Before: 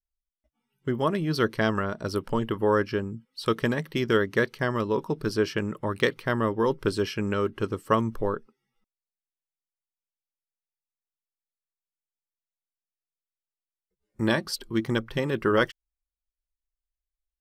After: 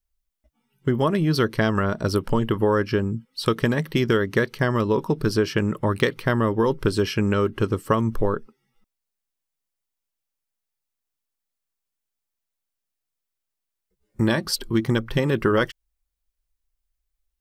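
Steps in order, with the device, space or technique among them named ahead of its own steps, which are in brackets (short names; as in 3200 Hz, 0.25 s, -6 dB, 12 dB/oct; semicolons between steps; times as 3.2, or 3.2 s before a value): ASMR close-microphone chain (low shelf 170 Hz +5.5 dB; compressor 4:1, threshold -23 dBFS, peak gain reduction 7 dB; high shelf 11000 Hz +3.5 dB); gain +6.5 dB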